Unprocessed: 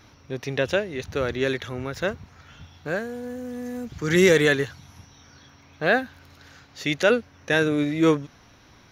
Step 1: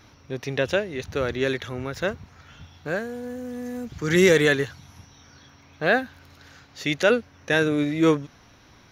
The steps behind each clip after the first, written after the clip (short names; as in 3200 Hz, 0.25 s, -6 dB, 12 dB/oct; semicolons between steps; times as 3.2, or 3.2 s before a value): nothing audible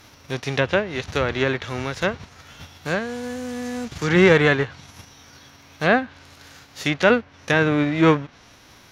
spectral whitening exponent 0.6; treble ducked by the level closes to 2200 Hz, closed at -20 dBFS; gain +3.5 dB